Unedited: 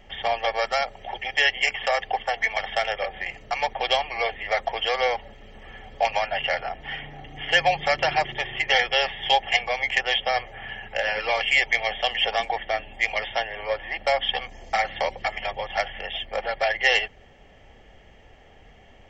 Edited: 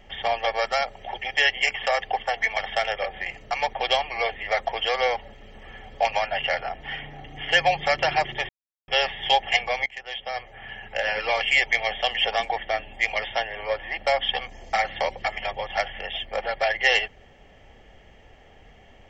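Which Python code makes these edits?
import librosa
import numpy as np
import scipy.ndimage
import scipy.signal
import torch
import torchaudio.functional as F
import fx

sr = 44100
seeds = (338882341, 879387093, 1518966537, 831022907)

y = fx.edit(x, sr, fx.silence(start_s=8.49, length_s=0.39),
    fx.fade_in_from(start_s=9.86, length_s=1.24, floor_db=-20.5), tone=tone)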